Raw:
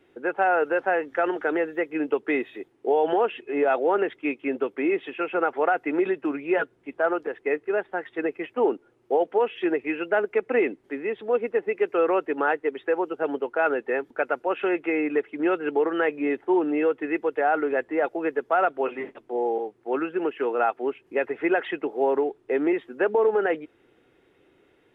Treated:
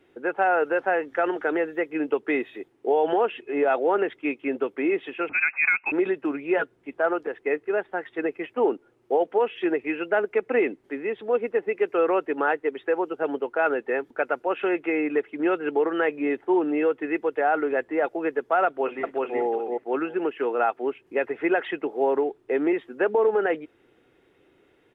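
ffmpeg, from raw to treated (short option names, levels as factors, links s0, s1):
-filter_complex "[0:a]asettb=1/sr,asplit=3[s0][s1][s2];[s0]atrim=end=5.294[s3];[s1]atrim=start=5.29:end=5.92,asetpts=PTS-STARTPTS,afade=t=in:d=0.004:c=qsin,afade=t=out:st=0.626:d=0.004:c=qsin,lowpass=f=2500:t=q:w=0.5098,lowpass=f=2500:t=q:w=0.6013,lowpass=f=2500:t=q:w=0.9,lowpass=f=2500:t=q:w=2.563,afreqshift=-2900[s4];[s2]atrim=start=5.916[s5];[s3][s4]acrossfade=d=0.004:c1=hsin:c2=qsin[s6];[s6][s5]acrossfade=d=0.004:c1=qsin:c2=hsin,asplit=2[s7][s8];[s8]afade=t=in:st=18.66:d=0.01,afade=t=out:st=19.4:d=0.01,aecho=0:1:370|740|1110:0.891251|0.133688|0.0200531[s9];[s7][s9]amix=inputs=2:normalize=0"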